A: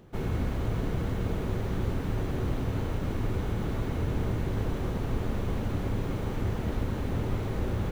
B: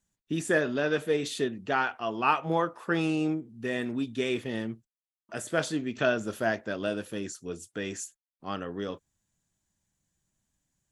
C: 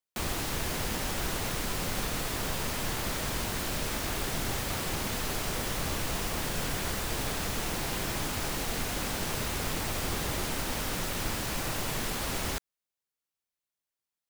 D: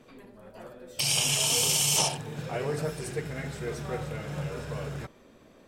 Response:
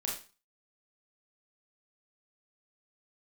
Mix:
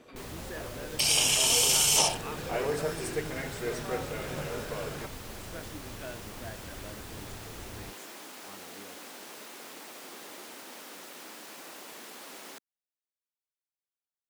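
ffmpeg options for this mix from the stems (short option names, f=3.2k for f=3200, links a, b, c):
-filter_complex "[0:a]volume=-16dB[a];[1:a]volume=-17.5dB[b];[2:a]highpass=f=250:w=0.5412,highpass=f=250:w=1.3066,volume=-11.5dB[c];[3:a]highpass=240,volume=1.5dB[d];[a][b][c][d]amix=inputs=4:normalize=0"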